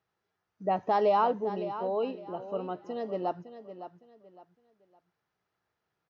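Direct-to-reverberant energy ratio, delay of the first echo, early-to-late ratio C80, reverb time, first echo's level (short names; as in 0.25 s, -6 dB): none, 0.56 s, none, none, -12.0 dB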